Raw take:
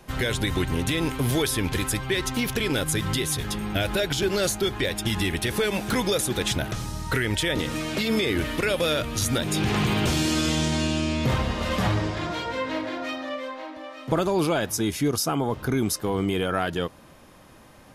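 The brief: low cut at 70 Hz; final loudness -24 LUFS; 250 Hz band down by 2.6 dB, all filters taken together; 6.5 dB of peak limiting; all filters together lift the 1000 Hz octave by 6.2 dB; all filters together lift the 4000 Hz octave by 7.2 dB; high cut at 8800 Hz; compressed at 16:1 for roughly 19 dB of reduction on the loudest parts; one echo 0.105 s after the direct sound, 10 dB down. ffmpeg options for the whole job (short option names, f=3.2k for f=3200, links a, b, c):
-af "highpass=70,lowpass=8.8k,equalizer=f=250:t=o:g=-4,equalizer=f=1k:t=o:g=7.5,equalizer=f=4k:t=o:g=8.5,acompressor=threshold=-36dB:ratio=16,alimiter=level_in=6dB:limit=-24dB:level=0:latency=1,volume=-6dB,aecho=1:1:105:0.316,volume=15.5dB"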